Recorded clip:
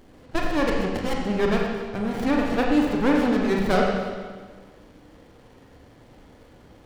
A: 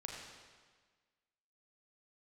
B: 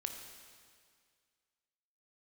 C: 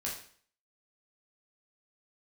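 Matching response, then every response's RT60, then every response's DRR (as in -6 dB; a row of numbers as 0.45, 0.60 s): A; 1.5, 2.0, 0.50 s; -1.5, 4.0, -5.0 dB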